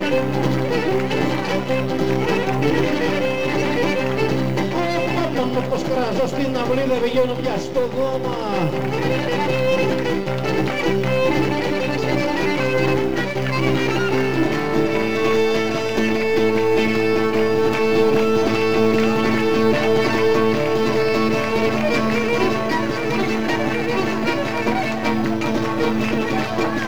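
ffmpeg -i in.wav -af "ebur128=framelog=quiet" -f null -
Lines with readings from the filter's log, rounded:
Integrated loudness:
  I:         -19.5 LUFS
  Threshold: -29.5 LUFS
Loudness range:
  LRA:         3.2 LU
  Threshold: -39.4 LUFS
  LRA low:   -20.7 LUFS
  LRA high:  -17.5 LUFS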